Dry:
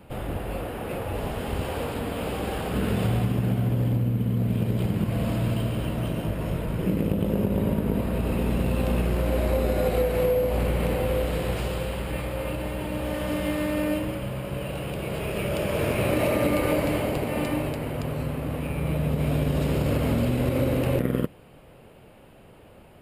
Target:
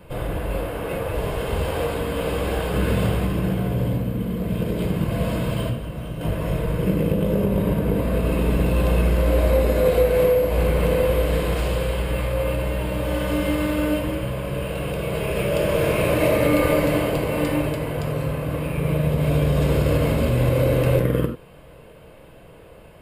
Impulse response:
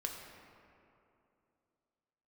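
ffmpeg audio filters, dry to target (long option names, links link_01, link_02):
-filter_complex "[0:a]asettb=1/sr,asplit=3[link_01][link_02][link_03];[link_01]atrim=end=5.694[link_04];[link_02]atrim=start=5.69:end=6.21,asetpts=PTS-STARTPTS,afade=type=in:duration=0.004:curve=qsin,afade=type=out:start_time=0.516:duration=0.004:curve=qsin,acrossover=split=150|1500[link_05][link_06][link_07];[link_05]acompressor=threshold=-33dB:ratio=4[link_08];[link_06]acompressor=threshold=-38dB:ratio=4[link_09];[link_07]acompressor=threshold=-52dB:ratio=4[link_10];[link_08][link_09][link_10]amix=inputs=3:normalize=0[link_11];[link_03]atrim=start=6.206[link_12];[link_04][link_11]acrossfade=duration=0.004:curve1=hsin:curve2=qsin[link_13];[link_13][link_12]acrossfade=duration=0.004:curve1=qsin:curve2=hsin[link_14];[1:a]atrim=start_sample=2205,atrim=end_sample=4410[link_15];[link_14][link_15]afir=irnorm=-1:irlink=0,volume=5.5dB"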